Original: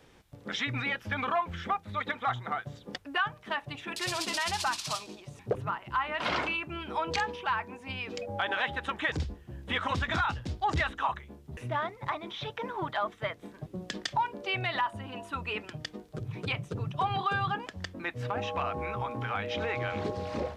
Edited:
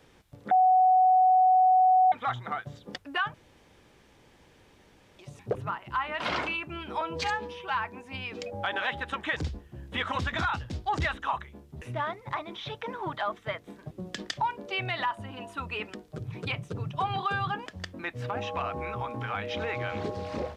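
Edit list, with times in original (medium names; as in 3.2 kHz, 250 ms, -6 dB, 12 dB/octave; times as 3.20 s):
0.51–2.12 s: bleep 744 Hz -17 dBFS
3.34–5.19 s: room tone
7.01–7.50 s: stretch 1.5×
15.70–15.95 s: delete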